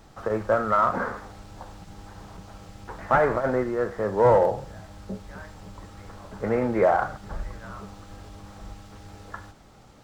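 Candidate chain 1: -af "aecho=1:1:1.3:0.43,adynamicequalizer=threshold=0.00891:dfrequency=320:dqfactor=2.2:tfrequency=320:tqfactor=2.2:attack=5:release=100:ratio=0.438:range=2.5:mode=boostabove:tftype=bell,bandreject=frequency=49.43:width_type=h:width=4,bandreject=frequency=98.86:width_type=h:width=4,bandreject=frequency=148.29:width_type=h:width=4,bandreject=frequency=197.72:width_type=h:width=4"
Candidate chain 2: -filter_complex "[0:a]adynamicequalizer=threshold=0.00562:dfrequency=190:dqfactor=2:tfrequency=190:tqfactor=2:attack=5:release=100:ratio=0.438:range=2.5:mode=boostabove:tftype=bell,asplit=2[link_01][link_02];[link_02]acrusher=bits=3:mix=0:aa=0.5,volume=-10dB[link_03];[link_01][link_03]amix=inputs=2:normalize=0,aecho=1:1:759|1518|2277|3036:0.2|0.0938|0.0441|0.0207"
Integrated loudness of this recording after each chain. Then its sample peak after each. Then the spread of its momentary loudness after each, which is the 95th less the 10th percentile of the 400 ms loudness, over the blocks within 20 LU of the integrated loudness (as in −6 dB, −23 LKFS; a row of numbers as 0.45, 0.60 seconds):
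−23.0, −22.5 LKFS; −7.5, −7.0 dBFS; 22, 21 LU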